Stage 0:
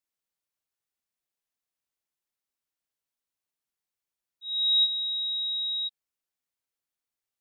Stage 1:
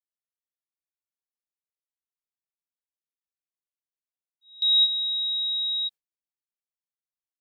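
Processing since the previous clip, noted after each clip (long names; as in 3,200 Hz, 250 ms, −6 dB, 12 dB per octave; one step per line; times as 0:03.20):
noise gate with hold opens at −23 dBFS
level +3 dB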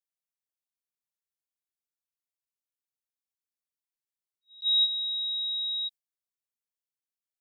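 high-shelf EQ 3,600 Hz +8.5 dB
level that may rise only so fast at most 370 dB per second
level −8.5 dB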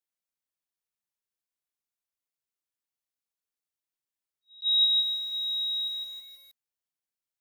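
feedback echo at a low word length 159 ms, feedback 55%, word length 9 bits, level −3 dB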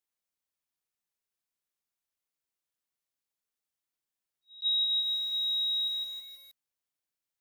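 downward compressor 10 to 1, threshold −27 dBFS, peak gain reduction 8.5 dB
level +1 dB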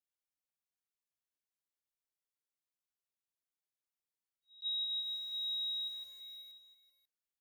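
single-tap delay 541 ms −13.5 dB
level −9 dB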